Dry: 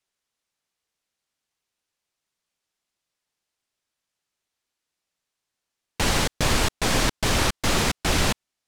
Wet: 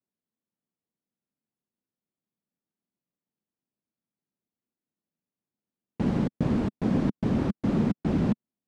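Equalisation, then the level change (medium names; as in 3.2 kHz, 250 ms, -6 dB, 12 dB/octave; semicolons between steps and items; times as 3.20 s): band-pass filter 210 Hz, Q 2.2; +7.5 dB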